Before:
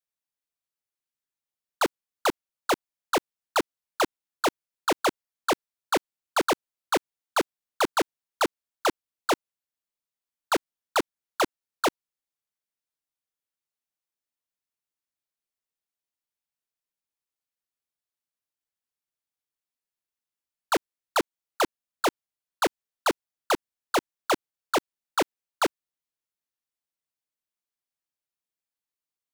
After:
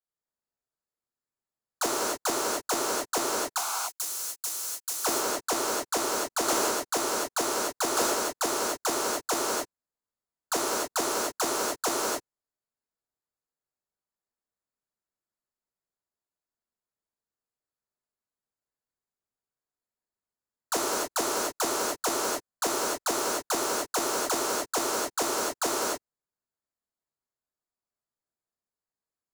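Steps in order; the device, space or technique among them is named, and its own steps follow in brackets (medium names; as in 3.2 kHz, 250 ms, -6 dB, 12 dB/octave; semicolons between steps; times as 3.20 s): local Wiener filter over 15 samples; 3.58–5.01 s: pre-emphasis filter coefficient 0.97; over-bright horn tweeter (resonant high shelf 4.5 kHz +9 dB, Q 1.5; peak limiter -16 dBFS, peak gain reduction 6 dB); gated-style reverb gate 320 ms flat, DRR -6 dB; trim -2 dB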